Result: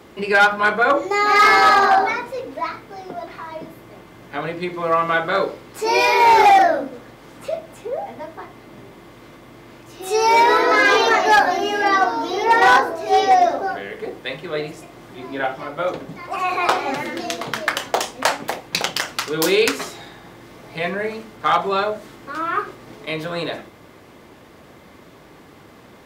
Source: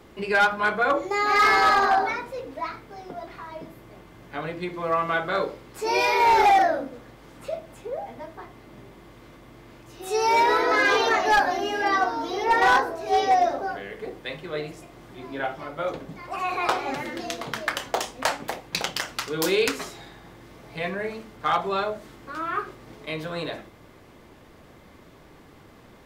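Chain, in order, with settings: high-pass 120 Hz 6 dB/octave; trim +6 dB

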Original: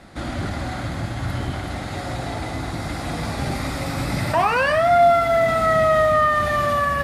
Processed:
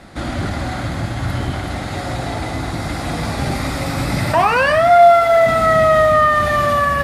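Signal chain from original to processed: 4.90–5.46 s: resonant low shelf 370 Hz -7 dB, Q 1.5; trim +4.5 dB

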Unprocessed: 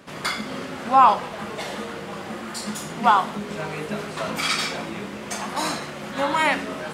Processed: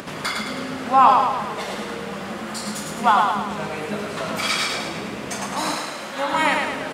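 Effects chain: feedback delay 107 ms, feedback 52%, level -4 dB; upward compressor, threshold -26 dBFS; 5.75–6.33 s: bass shelf 200 Hz -12 dB

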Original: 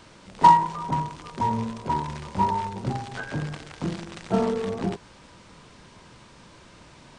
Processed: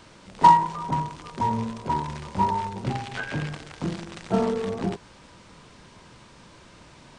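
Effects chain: 2.81–3.52 s: dynamic bell 2.5 kHz, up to +7 dB, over -52 dBFS, Q 1.2

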